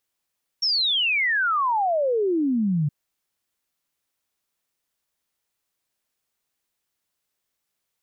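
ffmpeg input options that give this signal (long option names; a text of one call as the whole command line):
ffmpeg -f lavfi -i "aevalsrc='0.112*clip(min(t,2.27-t)/0.01,0,1)*sin(2*PI*5600*2.27/log(140/5600)*(exp(log(140/5600)*t/2.27)-1))':duration=2.27:sample_rate=44100" out.wav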